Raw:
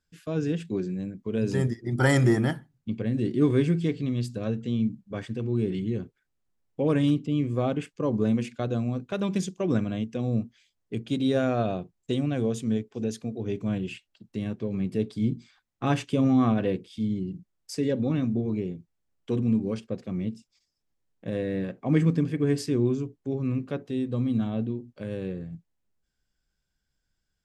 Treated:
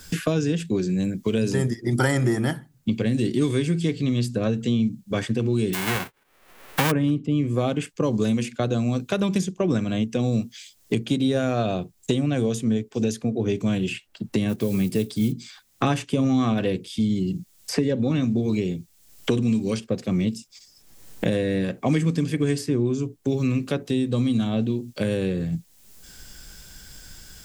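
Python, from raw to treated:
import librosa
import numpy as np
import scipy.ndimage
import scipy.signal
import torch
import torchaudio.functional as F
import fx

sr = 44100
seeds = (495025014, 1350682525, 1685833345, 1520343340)

y = fx.envelope_flatten(x, sr, power=0.1, at=(5.73, 6.9), fade=0.02)
y = fx.block_float(y, sr, bits=7, at=(14.48, 15.31), fade=0.02)
y = fx.high_shelf(y, sr, hz=5100.0, db=11.0)
y = fx.band_squash(y, sr, depth_pct=100)
y = y * 10.0 ** (3.0 / 20.0)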